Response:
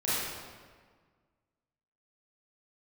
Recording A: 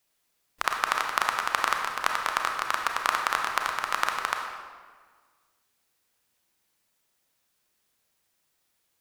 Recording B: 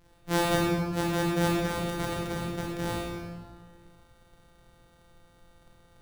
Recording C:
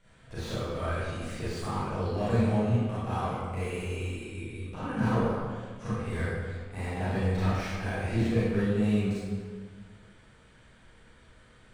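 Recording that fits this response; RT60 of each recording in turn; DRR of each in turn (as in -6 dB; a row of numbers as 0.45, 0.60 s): C; 1.6, 1.6, 1.6 s; 2.0, -5.0, -11.5 dB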